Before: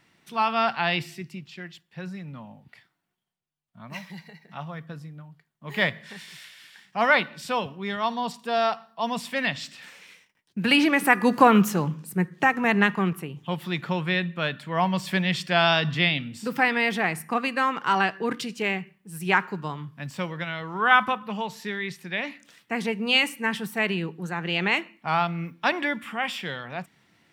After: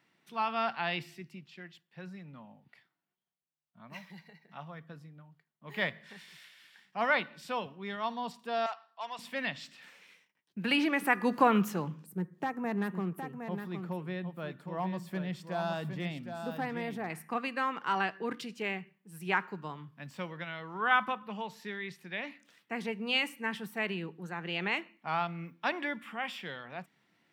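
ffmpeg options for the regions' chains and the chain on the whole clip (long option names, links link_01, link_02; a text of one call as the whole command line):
ffmpeg -i in.wav -filter_complex "[0:a]asettb=1/sr,asplit=3[link_01][link_02][link_03];[link_01]atrim=end=8.664[link_04];[link_02]atrim=start=8.66:end=9.19,asetpts=PTS-STARTPTS,afade=type=in:duration=0.004:curve=qsin,afade=type=out:start_time=0.526:duration=0.004:curve=qsin,asoftclip=type=hard:threshold=-20.5dB,highpass=800,lowpass=6500[link_05];[link_03]atrim=start=9.186[link_06];[link_04][link_05]acrossfade=duration=0.004:curve1=hsin:curve2=qsin[link_07];[link_07][link_06]acrossfade=duration=0.004:curve1=qsin:curve2=hsin,asettb=1/sr,asplit=3[link_08][link_09][link_10];[link_08]atrim=end=12.064[link_11];[link_09]atrim=start=12.06:end=17.1,asetpts=PTS-STARTPTS,afade=type=in:duration=0.004:curve=qsin,afade=type=out:start_time=5.036:duration=0.004:curve=qsin,equalizer=frequency=2900:width_type=o:width=2.4:gain=-13,volume=17dB,asoftclip=hard,volume=-17dB,aecho=1:1:763:0.422,atrim=end_sample=222264[link_12];[link_10]atrim=start=17.096[link_13];[link_11][link_12]acrossfade=duration=0.004:curve1=hsin:curve2=qsin[link_14];[link_14][link_13]acrossfade=duration=0.004:curve1=qsin:curve2=hsin,highpass=150,equalizer=frequency=8300:width=0.61:gain=-4.5,volume=-8dB" out.wav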